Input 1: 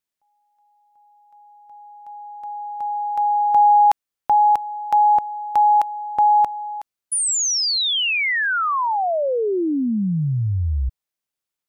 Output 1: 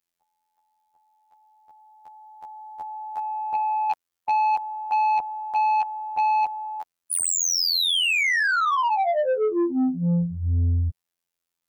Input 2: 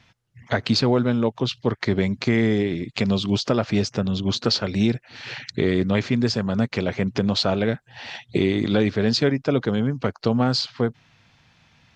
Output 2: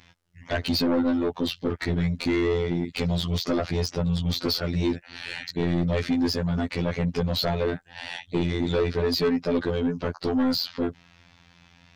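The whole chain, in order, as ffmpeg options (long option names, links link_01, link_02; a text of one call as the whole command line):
ffmpeg -i in.wav -af "afftfilt=real='hypot(re,im)*cos(PI*b)':imag='0':win_size=2048:overlap=0.75,asoftclip=type=tanh:threshold=-22.5dB,volume=5dB" out.wav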